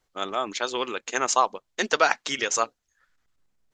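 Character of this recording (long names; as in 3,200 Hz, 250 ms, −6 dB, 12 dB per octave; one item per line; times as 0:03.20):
background noise floor −78 dBFS
spectral slope −0.5 dB per octave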